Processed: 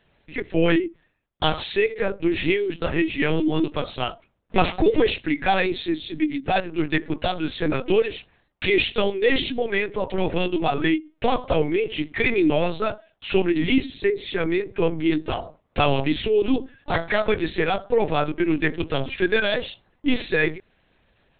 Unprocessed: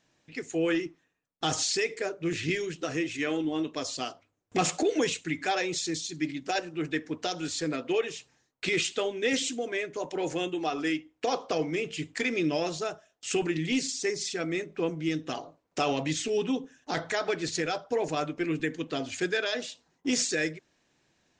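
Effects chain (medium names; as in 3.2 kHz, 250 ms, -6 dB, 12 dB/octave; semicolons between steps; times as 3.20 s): LPC vocoder at 8 kHz pitch kept; trim +8.5 dB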